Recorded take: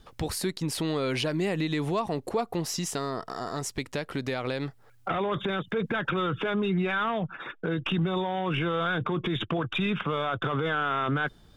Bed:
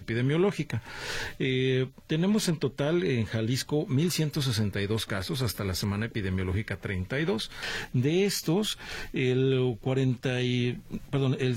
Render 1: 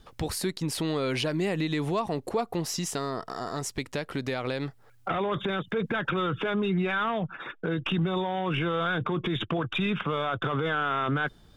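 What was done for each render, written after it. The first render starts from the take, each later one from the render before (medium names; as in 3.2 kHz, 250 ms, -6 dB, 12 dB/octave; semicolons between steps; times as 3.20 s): no audible change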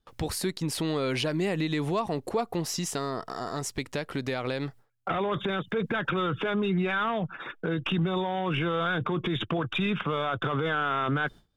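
gate with hold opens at -41 dBFS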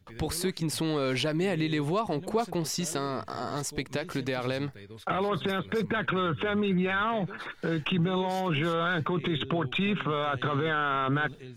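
add bed -17.5 dB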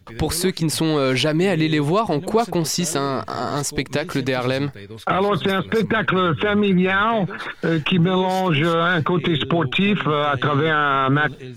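trim +9.5 dB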